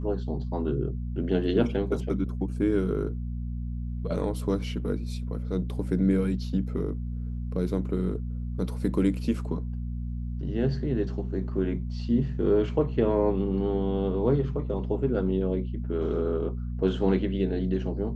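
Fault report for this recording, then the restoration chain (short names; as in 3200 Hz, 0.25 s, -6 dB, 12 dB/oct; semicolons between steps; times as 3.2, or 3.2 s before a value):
hum 60 Hz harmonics 4 -32 dBFS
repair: de-hum 60 Hz, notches 4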